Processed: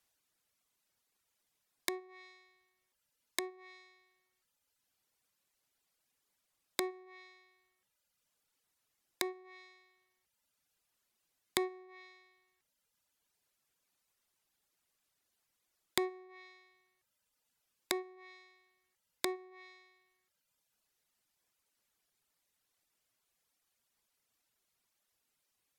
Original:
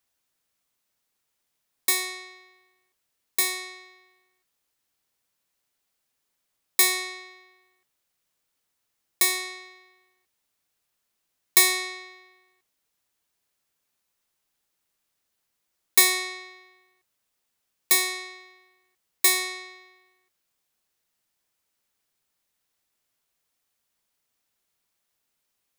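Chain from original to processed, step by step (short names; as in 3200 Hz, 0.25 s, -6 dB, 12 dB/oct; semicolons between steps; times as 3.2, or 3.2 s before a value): reverb removal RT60 1.1 s; treble ducked by the level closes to 510 Hz, closed at -26 dBFS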